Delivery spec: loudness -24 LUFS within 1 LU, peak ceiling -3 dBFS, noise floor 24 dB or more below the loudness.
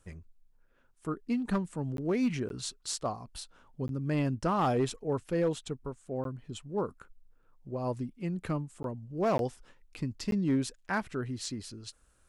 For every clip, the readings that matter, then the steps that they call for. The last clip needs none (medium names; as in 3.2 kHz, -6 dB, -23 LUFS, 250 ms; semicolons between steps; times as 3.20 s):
clipped samples 0.5%; clipping level -22.0 dBFS; dropouts 7; longest dropout 12 ms; loudness -33.5 LUFS; peak level -22.0 dBFS; loudness target -24.0 LUFS
-> clip repair -22 dBFS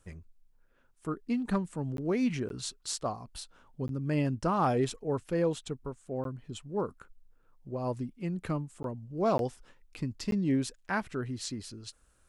clipped samples 0.0%; dropouts 7; longest dropout 12 ms
-> interpolate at 1.97/2.49/3.88/6.24/8.83/9.38/10.31 s, 12 ms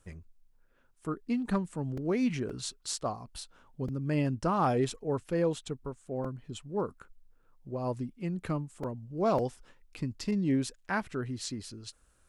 dropouts 0; loudness -33.0 LUFS; peak level -17.0 dBFS; loudness target -24.0 LUFS
-> trim +9 dB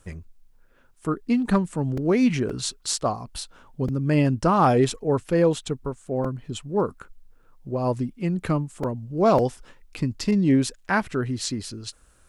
loudness -24.0 LUFS; peak level -8.0 dBFS; noise floor -57 dBFS